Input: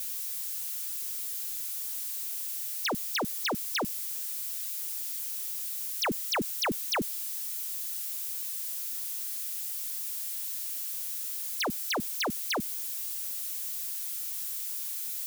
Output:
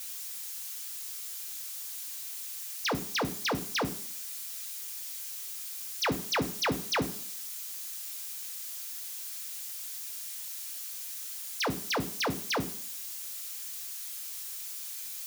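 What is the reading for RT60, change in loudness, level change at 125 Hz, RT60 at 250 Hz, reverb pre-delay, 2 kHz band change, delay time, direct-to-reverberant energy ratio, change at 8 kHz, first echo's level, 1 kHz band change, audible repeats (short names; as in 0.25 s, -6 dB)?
0.55 s, -3.0 dB, +6.0 dB, 0.55 s, 3 ms, +0.5 dB, none, 6.5 dB, -2.0 dB, none, +0.5 dB, none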